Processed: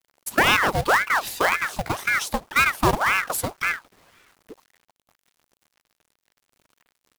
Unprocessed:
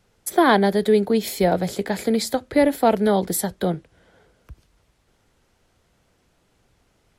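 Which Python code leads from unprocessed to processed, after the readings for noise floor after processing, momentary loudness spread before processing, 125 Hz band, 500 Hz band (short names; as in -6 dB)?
under -85 dBFS, 8 LU, -3.0 dB, -9.5 dB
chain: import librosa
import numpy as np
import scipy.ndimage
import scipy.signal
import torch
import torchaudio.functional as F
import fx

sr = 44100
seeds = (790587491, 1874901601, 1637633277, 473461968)

y = fx.quant_companded(x, sr, bits=4)
y = fx.ring_lfo(y, sr, carrier_hz=1100.0, swing_pct=75, hz=1.9)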